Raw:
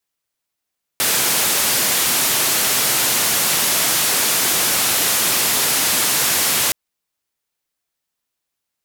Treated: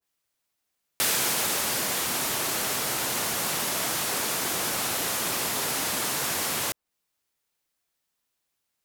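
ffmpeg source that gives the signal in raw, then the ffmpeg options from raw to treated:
-f lavfi -i "anoisesrc=c=white:d=5.72:r=44100:seed=1,highpass=f=110,lowpass=f=15000,volume=-10.9dB"
-af "alimiter=limit=-15.5dB:level=0:latency=1:release=13,adynamicequalizer=threshold=0.00708:dfrequency=1600:dqfactor=0.7:tfrequency=1600:tqfactor=0.7:attack=5:release=100:ratio=0.375:range=3:mode=cutabove:tftype=highshelf"

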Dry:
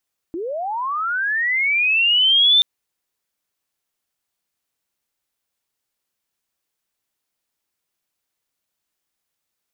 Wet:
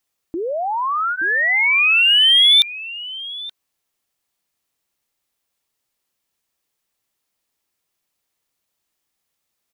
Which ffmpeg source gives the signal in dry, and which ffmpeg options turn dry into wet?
-f lavfi -i "aevalsrc='pow(10,(-24+14*t/2.28)/20)*sin(2*PI*(310*t+3290*t*t/(2*2.28)))':d=2.28:s=44100"
-filter_complex "[0:a]bandreject=f=1.5k:w=15,asplit=2[a][b];[b]volume=14.5dB,asoftclip=hard,volume=-14.5dB,volume=-7.5dB[c];[a][c]amix=inputs=2:normalize=0,asplit=2[d][e];[e]adelay=874.6,volume=-10dB,highshelf=f=4k:g=-19.7[f];[d][f]amix=inputs=2:normalize=0"

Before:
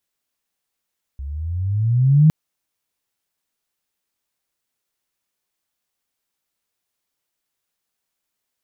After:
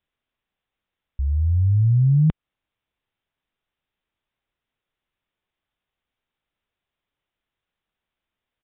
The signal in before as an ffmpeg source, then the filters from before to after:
-f lavfi -i "aevalsrc='pow(10,(-27+19.5*t/1.11)/20)*sin(2*PI*66*1.11/log(160/66)*(exp(log(160/66)*t/1.11)-1))':d=1.11:s=44100"
-af "lowshelf=f=100:g=11.5,acompressor=threshold=-15dB:ratio=5,aresample=8000,aresample=44100"

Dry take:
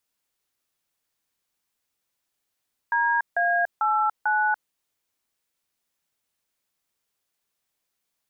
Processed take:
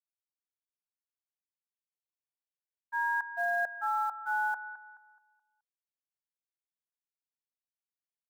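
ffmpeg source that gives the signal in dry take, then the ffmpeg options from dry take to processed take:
-f lavfi -i "aevalsrc='0.0794*clip(min(mod(t,0.445),0.288-mod(t,0.445))/0.002,0,1)*(eq(floor(t/0.445),0)*(sin(2*PI*941*mod(t,0.445))+sin(2*PI*1633*mod(t,0.445)))+eq(floor(t/0.445),1)*(sin(2*PI*697*mod(t,0.445))+sin(2*PI*1633*mod(t,0.445)))+eq(floor(t/0.445),2)*(sin(2*PI*852*mod(t,0.445))+sin(2*PI*1336*mod(t,0.445)))+eq(floor(t/0.445),3)*(sin(2*PI*852*mod(t,0.445))+sin(2*PI*1477*mod(t,0.445))))':d=1.78:s=44100"
-filter_complex "[0:a]agate=range=-33dB:threshold=-15dB:ratio=3:detection=peak,acrossover=split=910[a][b];[a]acrusher=bits=5:mode=log:mix=0:aa=0.000001[c];[b]asplit=2[d][e];[e]adelay=213,lowpass=f=1.6k:p=1,volume=-7dB,asplit=2[f][g];[g]adelay=213,lowpass=f=1.6k:p=1,volume=0.43,asplit=2[h][i];[i]adelay=213,lowpass=f=1.6k:p=1,volume=0.43,asplit=2[j][k];[k]adelay=213,lowpass=f=1.6k:p=1,volume=0.43,asplit=2[l][m];[m]adelay=213,lowpass=f=1.6k:p=1,volume=0.43[n];[d][f][h][j][l][n]amix=inputs=6:normalize=0[o];[c][o]amix=inputs=2:normalize=0"

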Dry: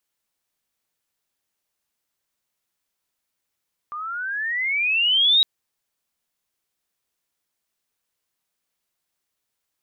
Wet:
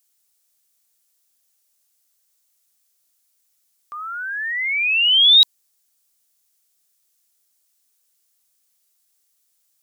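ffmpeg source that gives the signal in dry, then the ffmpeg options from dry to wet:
-f lavfi -i "aevalsrc='pow(10,(-12.5+16*(t/1.51-1))/20)*sin(2*PI*1180*1.51/(20.5*log(2)/12)*(exp(20.5*log(2)/12*t/1.51)-1))':d=1.51:s=44100"
-af "bass=f=250:g=-6,treble=f=4k:g=14,bandreject=f=1k:w=9.5"

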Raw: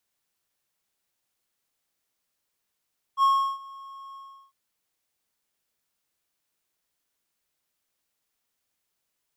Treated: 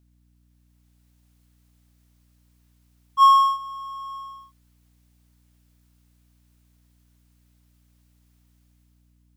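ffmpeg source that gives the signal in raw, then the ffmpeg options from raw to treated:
-f lavfi -i "aevalsrc='0.2*(1-4*abs(mod(1090*t+0.25,1)-0.5))':d=1.351:s=44100,afade=t=in:d=0.059,afade=t=out:st=0.059:d=0.351:silence=0.0631,afade=t=out:st=0.98:d=0.371"
-af "dynaudnorm=f=220:g=7:m=8dB,aeval=exprs='val(0)+0.001*(sin(2*PI*60*n/s)+sin(2*PI*2*60*n/s)/2+sin(2*PI*3*60*n/s)/3+sin(2*PI*4*60*n/s)/4+sin(2*PI*5*60*n/s)/5)':c=same"

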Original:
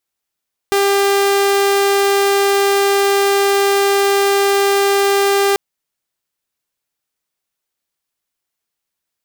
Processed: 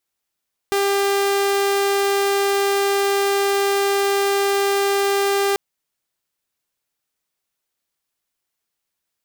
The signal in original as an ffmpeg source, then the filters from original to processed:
-f lavfi -i "aevalsrc='0.355*(2*mod(398*t,1)-1)':d=4.84:s=44100"
-af "alimiter=limit=-14dB:level=0:latency=1:release=24"

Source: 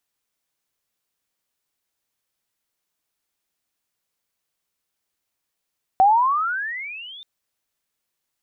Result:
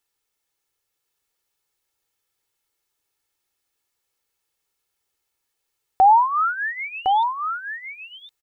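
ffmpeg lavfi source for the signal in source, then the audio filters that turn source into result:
-f lavfi -i "aevalsrc='pow(10,(-10-27.5*t/1.23)/20)*sin(2*PI*747*1.23/(27.5*log(2)/12)*(exp(27.5*log(2)/12*t/1.23)-1))':d=1.23:s=44100"
-filter_complex "[0:a]aecho=1:1:2.3:0.54,asplit=2[a][b];[b]aecho=0:1:1059:0.531[c];[a][c]amix=inputs=2:normalize=0"

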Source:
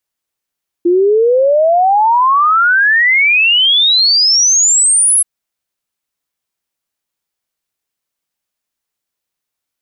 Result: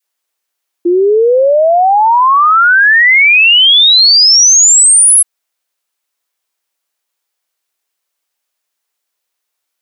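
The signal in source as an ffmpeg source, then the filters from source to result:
-f lavfi -i "aevalsrc='0.447*clip(min(t,4.38-t)/0.01,0,1)*sin(2*PI*340*4.38/log(11000/340)*(exp(log(11000/340)*t/4.38)-1))':d=4.38:s=44100"
-filter_complex "[0:a]highpass=430,adynamicequalizer=threshold=0.0631:dfrequency=710:dqfactor=0.7:tfrequency=710:tqfactor=0.7:attack=5:release=100:ratio=0.375:range=2:mode=cutabove:tftype=bell,asplit=2[a][b];[b]alimiter=limit=-11dB:level=0:latency=1,volume=0dB[c];[a][c]amix=inputs=2:normalize=0"

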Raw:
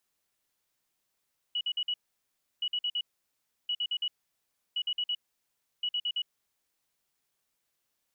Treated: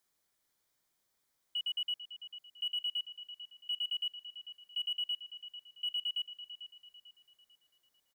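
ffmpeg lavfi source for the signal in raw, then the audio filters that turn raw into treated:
-f lavfi -i "aevalsrc='0.0422*sin(2*PI*2930*t)*clip(min(mod(mod(t,1.07),0.11),0.06-mod(mod(t,1.07),0.11))/0.005,0,1)*lt(mod(t,1.07),0.44)':d=5.35:s=44100"
-filter_complex "[0:a]bandreject=f=2.7k:w=6.1,asplit=2[a][b];[b]adelay=445,lowpass=f=2.9k:p=1,volume=-9dB,asplit=2[c][d];[d]adelay=445,lowpass=f=2.9k:p=1,volume=0.51,asplit=2[e][f];[f]adelay=445,lowpass=f=2.9k:p=1,volume=0.51,asplit=2[g][h];[h]adelay=445,lowpass=f=2.9k:p=1,volume=0.51,asplit=2[i][j];[j]adelay=445,lowpass=f=2.9k:p=1,volume=0.51,asplit=2[k][l];[l]adelay=445,lowpass=f=2.9k:p=1,volume=0.51[m];[a][c][e][g][i][k][m]amix=inputs=7:normalize=0,volume=31dB,asoftclip=hard,volume=-31dB"

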